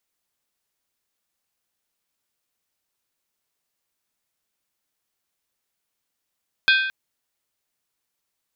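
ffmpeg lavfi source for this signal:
ffmpeg -f lavfi -i "aevalsrc='0.211*pow(10,-3*t/0.95)*sin(2*PI*1560*t)+0.15*pow(10,-3*t/0.752)*sin(2*PI*2486.6*t)+0.106*pow(10,-3*t/0.65)*sin(2*PI*3332.2*t)+0.075*pow(10,-3*t/0.627)*sin(2*PI*3581.8*t)+0.0531*pow(10,-3*t/0.583)*sin(2*PI*4138.7*t)+0.0376*pow(10,-3*t/0.556)*sin(2*PI*4552.1*t)+0.0266*pow(10,-3*t/0.535)*sin(2*PI*4923.4*t)':duration=0.22:sample_rate=44100" out.wav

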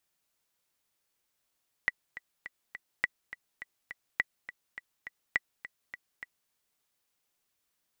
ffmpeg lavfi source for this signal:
ffmpeg -f lavfi -i "aevalsrc='pow(10,(-12.5-15*gte(mod(t,4*60/207),60/207))/20)*sin(2*PI*1960*mod(t,60/207))*exp(-6.91*mod(t,60/207)/0.03)':duration=4.63:sample_rate=44100" out.wav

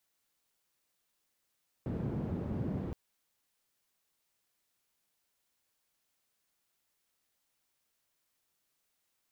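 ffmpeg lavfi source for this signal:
ffmpeg -f lavfi -i "anoisesrc=color=white:duration=1.07:sample_rate=44100:seed=1,highpass=frequency=90,lowpass=frequency=190,volume=-8dB" out.wav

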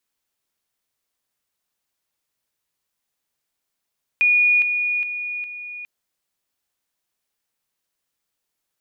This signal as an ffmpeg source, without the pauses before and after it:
ffmpeg -f lavfi -i "aevalsrc='pow(10,(-13-6*floor(t/0.41))/20)*sin(2*PI*2450*t)':duration=1.64:sample_rate=44100" out.wav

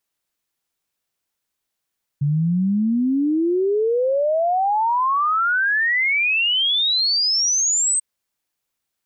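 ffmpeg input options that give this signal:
ffmpeg -f lavfi -i "aevalsrc='0.158*clip(min(t,5.79-t)/0.01,0,1)*sin(2*PI*140*5.79/log(8400/140)*(exp(log(8400/140)*t/5.79)-1))':duration=5.79:sample_rate=44100" out.wav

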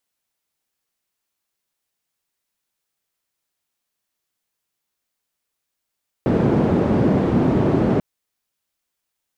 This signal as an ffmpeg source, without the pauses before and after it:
ffmpeg -f lavfi -i "anoisesrc=color=white:duration=1.74:sample_rate=44100:seed=1,highpass=frequency=120,lowpass=frequency=290,volume=8.3dB" out.wav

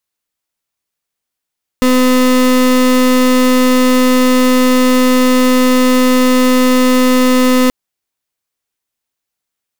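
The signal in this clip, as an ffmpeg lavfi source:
ffmpeg -f lavfi -i "aevalsrc='0.335*(2*lt(mod(254*t,1),0.32)-1)':duration=5.88:sample_rate=44100" out.wav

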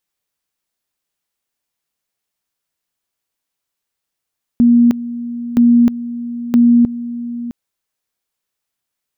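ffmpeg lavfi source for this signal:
ffmpeg -f lavfi -i "aevalsrc='pow(10,(-6-15*gte(mod(t,0.97),0.31))/20)*sin(2*PI*238*t)':duration=2.91:sample_rate=44100" out.wav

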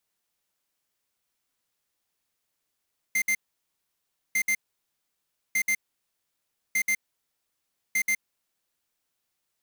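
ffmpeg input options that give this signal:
ffmpeg -f lavfi -i "aevalsrc='0.0631*(2*lt(mod(2090*t,1),0.5)-1)*clip(min(mod(mod(t,1.2),0.13),0.07-mod(mod(t,1.2),0.13))/0.005,0,1)*lt(mod(t,1.2),0.26)':duration=6:sample_rate=44100" out.wav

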